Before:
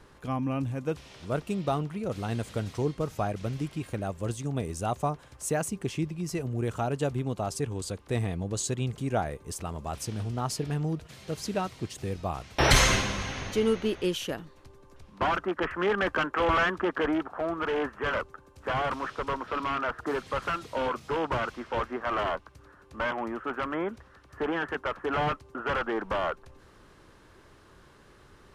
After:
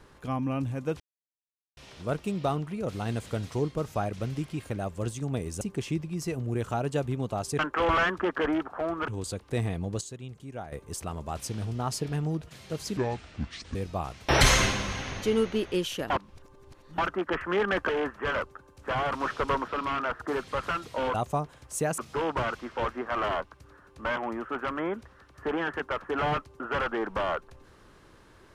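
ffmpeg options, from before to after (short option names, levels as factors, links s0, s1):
-filter_complex "[0:a]asplit=16[s0][s1][s2][s3][s4][s5][s6][s7][s8][s9][s10][s11][s12][s13][s14][s15];[s0]atrim=end=1,asetpts=PTS-STARTPTS,afade=t=out:st=0.996:d=0.004:c=hsin,apad=pad_dur=0.77[s16];[s1]atrim=start=1:end=4.842,asetpts=PTS-STARTPTS,afade=t=in:d=0.004:c=hsin[s17];[s2]atrim=start=5.678:end=7.662[s18];[s3]atrim=start=16.188:end=17.682[s19];[s4]atrim=start=7.658:end=8.592[s20];[s5]atrim=start=8.588:end=9.302,asetpts=PTS-STARTPTS,volume=0.282[s21];[s6]atrim=start=9.298:end=11.554[s22];[s7]atrim=start=11.55:end=12.05,asetpts=PTS-STARTPTS,asetrate=28224,aresample=44100,atrim=end_sample=34453,asetpts=PTS-STARTPTS[s23];[s8]atrim=start=12.046:end=14.402[s24];[s9]atrim=start=14.398:end=15.282,asetpts=PTS-STARTPTS,areverse[s25];[s10]atrim=start=15.278:end=16.192[s26];[s11]atrim=start=17.678:end=18.992[s27];[s12]atrim=start=18.988:end=19.472,asetpts=PTS-STARTPTS,volume=1.58[s28];[s13]atrim=start=19.468:end=20.932[s29];[s14]atrim=start=4.838:end=5.682[s30];[s15]atrim=start=20.928[s31];[s16][s17]concat=n=2:v=0:a=1[s32];[s32][s18]acrossfade=d=0.004:c1=hsin:c2=hsin[s33];[s33][s19]acrossfade=d=0.004:c1=hsin:c2=hsin[s34];[s34][s20]acrossfade=d=0.004:c1=hsin:c2=hsin[s35];[s35][s21]acrossfade=d=0.004:c1=hsin:c2=hsin[s36];[s36][s22]acrossfade=d=0.004:c1=hsin:c2=hsin[s37];[s37][s23]acrossfade=d=0.004:c1=hsin:c2=hsin[s38];[s38][s24]acrossfade=d=0.004:c1=hsin:c2=hsin[s39];[s39][s25]acrossfade=d=0.004:c1=hsin:c2=hsin[s40];[s40][s26]acrossfade=d=0.004:c1=hsin:c2=hsin[s41];[s41][s27]acrossfade=d=0.004:c1=hsin:c2=hsin[s42];[s42][s28]acrossfade=d=0.004:c1=hsin:c2=hsin[s43];[s43][s29]acrossfade=d=0.004:c1=hsin:c2=hsin[s44];[s44][s30]acrossfade=d=0.004:c1=hsin:c2=hsin[s45];[s45][s31]acrossfade=d=0.004:c1=hsin:c2=hsin"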